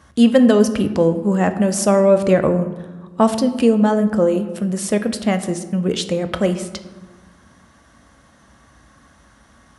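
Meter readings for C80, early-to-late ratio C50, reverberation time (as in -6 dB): 13.0 dB, 11.5 dB, 1.4 s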